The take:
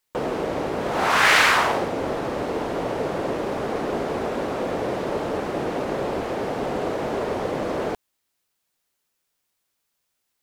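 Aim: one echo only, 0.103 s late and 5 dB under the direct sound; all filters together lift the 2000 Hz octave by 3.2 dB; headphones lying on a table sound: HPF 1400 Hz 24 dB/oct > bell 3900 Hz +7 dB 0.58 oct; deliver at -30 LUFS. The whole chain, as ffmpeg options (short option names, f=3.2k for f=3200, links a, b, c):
-af "highpass=f=1.4k:w=0.5412,highpass=f=1.4k:w=1.3066,equalizer=f=2k:t=o:g=4,equalizer=f=3.9k:t=o:w=0.58:g=7,aecho=1:1:103:0.562,volume=-14.5dB"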